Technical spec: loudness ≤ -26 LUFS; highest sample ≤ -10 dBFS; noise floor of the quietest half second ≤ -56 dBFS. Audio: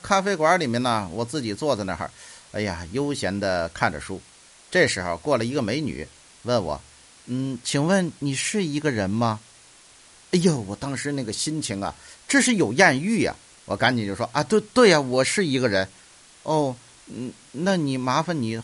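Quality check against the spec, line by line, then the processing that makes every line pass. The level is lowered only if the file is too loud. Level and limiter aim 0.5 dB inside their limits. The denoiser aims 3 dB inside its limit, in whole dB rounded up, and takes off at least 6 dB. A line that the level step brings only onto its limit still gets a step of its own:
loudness -23.0 LUFS: fail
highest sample -3.5 dBFS: fail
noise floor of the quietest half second -51 dBFS: fail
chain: denoiser 6 dB, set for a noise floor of -51 dBFS; gain -3.5 dB; limiter -10.5 dBFS

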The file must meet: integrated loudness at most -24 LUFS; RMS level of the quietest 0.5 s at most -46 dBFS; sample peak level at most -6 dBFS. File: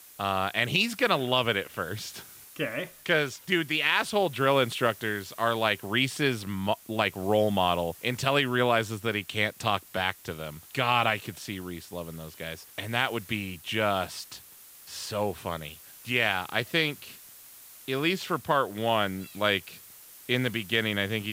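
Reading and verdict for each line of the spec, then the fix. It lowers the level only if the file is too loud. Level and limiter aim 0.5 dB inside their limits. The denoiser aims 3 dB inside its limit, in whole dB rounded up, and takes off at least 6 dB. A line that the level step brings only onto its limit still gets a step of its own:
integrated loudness -27.5 LUFS: OK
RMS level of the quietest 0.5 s -51 dBFS: OK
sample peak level -7.5 dBFS: OK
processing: none

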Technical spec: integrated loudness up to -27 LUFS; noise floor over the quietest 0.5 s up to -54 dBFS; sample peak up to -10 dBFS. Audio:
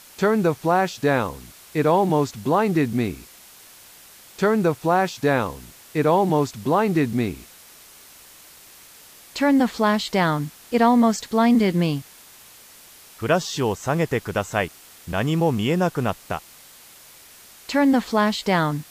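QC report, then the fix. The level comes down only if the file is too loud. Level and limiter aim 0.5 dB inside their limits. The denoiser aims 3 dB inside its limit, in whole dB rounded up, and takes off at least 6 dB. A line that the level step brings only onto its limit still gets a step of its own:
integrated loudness -21.5 LUFS: fail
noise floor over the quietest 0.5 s -47 dBFS: fail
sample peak -6.0 dBFS: fail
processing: denoiser 6 dB, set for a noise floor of -47 dBFS; gain -6 dB

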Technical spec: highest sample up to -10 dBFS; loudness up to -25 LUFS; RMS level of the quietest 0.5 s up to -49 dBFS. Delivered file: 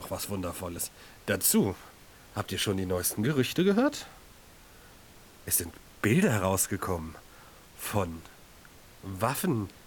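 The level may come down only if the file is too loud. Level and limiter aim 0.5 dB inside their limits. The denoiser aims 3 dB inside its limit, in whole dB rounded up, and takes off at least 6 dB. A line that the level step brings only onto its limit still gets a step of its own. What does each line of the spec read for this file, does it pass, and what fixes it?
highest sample -11.0 dBFS: OK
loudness -29.0 LUFS: OK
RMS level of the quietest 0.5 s -53 dBFS: OK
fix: none

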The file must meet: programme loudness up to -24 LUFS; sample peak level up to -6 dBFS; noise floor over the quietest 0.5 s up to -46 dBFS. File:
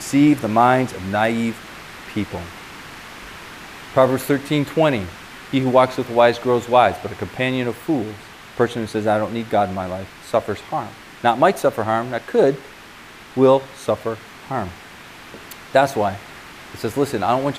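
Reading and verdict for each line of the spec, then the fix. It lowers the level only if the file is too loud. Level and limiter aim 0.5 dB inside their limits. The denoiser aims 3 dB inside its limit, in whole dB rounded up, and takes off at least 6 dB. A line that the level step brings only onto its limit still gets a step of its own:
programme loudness -19.5 LUFS: fail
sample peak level -1.5 dBFS: fail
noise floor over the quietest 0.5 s -41 dBFS: fail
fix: denoiser 6 dB, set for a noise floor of -41 dBFS; gain -5 dB

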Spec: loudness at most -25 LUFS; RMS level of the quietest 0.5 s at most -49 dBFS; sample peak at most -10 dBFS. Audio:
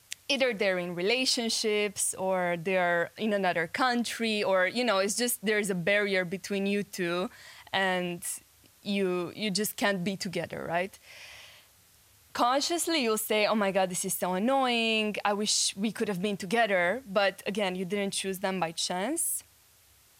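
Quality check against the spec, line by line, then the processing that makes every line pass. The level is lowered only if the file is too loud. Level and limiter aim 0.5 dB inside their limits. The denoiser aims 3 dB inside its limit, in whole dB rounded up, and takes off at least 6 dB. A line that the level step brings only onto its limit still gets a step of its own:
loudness -28.5 LUFS: OK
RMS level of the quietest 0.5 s -61 dBFS: OK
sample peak -12.5 dBFS: OK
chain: none

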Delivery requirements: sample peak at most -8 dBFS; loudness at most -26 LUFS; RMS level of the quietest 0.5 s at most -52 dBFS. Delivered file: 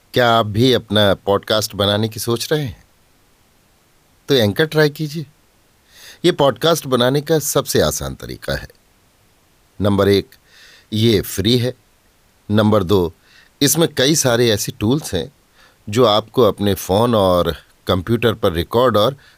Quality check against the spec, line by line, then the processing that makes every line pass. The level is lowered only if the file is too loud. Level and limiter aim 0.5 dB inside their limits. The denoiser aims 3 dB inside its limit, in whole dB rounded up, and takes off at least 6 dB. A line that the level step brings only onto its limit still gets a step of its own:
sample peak -2.5 dBFS: fail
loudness -16.5 LUFS: fail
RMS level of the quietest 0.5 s -55 dBFS: OK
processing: gain -10 dB

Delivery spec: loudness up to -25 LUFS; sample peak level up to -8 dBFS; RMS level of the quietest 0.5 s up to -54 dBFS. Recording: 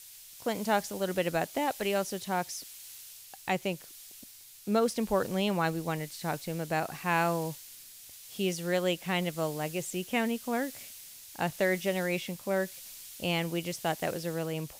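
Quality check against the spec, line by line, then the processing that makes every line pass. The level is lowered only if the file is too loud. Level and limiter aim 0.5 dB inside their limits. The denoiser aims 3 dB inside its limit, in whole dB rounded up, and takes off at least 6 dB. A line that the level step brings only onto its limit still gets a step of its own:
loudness -31.5 LUFS: OK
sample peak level -14.0 dBFS: OK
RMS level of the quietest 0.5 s -51 dBFS: fail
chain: denoiser 6 dB, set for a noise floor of -51 dBFS

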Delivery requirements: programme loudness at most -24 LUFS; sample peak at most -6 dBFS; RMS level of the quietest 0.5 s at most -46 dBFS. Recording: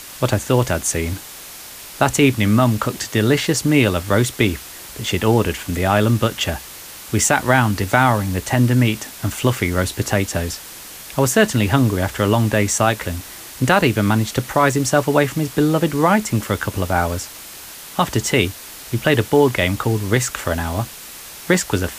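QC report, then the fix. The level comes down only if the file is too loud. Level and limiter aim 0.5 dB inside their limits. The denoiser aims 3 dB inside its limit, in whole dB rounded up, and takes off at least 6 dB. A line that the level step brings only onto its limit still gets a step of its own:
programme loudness -18.5 LUFS: fail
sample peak -2.5 dBFS: fail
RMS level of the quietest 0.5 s -36 dBFS: fail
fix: denoiser 7 dB, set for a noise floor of -36 dBFS; gain -6 dB

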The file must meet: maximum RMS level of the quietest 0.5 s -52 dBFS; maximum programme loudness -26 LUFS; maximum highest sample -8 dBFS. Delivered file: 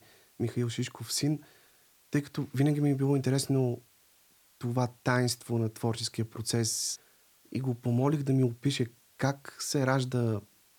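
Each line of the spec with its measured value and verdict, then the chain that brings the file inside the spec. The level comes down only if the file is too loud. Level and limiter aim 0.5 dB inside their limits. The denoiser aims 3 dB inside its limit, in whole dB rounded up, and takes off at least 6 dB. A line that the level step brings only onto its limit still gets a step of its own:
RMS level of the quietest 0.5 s -64 dBFS: OK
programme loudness -30.5 LUFS: OK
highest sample -11.5 dBFS: OK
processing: none

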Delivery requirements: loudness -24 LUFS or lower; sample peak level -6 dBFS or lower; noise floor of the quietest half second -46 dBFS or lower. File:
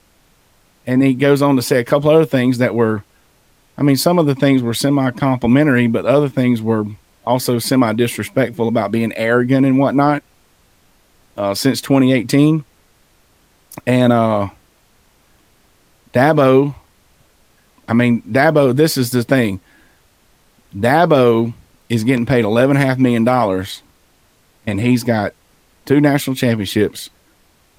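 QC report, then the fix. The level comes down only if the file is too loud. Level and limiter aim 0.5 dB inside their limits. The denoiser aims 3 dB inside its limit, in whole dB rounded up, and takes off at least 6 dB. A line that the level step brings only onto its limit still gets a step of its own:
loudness -15.0 LUFS: fail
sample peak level -1.5 dBFS: fail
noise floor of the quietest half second -55 dBFS: OK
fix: gain -9.5 dB

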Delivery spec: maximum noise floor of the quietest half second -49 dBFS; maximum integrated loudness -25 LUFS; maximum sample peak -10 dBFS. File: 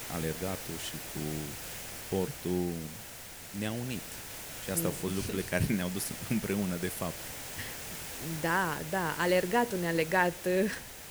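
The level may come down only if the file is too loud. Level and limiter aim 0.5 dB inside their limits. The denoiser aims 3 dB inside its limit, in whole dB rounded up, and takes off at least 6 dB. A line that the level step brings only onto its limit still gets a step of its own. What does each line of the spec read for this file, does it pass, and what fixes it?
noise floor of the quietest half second -46 dBFS: fail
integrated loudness -33.0 LUFS: OK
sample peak -13.0 dBFS: OK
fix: denoiser 6 dB, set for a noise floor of -46 dBFS

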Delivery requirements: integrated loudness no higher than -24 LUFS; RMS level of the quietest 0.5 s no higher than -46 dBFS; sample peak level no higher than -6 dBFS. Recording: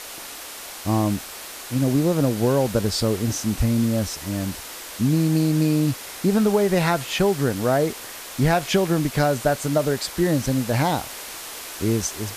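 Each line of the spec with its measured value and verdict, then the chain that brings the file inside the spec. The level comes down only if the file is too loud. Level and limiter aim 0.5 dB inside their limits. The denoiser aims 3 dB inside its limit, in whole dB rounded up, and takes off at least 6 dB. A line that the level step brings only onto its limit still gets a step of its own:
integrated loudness -22.0 LUFS: fail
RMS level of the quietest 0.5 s -37 dBFS: fail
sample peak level -7.5 dBFS: OK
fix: denoiser 10 dB, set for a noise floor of -37 dBFS; gain -2.5 dB

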